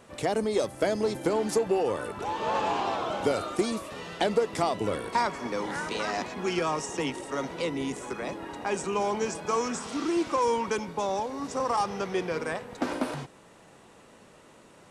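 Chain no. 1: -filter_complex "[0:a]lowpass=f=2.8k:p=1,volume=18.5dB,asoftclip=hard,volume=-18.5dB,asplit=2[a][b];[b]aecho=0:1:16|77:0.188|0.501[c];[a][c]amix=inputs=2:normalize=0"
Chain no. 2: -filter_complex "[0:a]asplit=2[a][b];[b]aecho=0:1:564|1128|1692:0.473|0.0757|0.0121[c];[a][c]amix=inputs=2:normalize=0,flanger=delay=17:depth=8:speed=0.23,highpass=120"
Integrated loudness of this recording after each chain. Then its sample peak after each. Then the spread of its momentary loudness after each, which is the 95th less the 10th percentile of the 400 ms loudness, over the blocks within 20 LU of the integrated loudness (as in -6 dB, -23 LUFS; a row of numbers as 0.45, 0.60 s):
-29.0, -31.5 LUFS; -14.5, -13.5 dBFS; 7, 7 LU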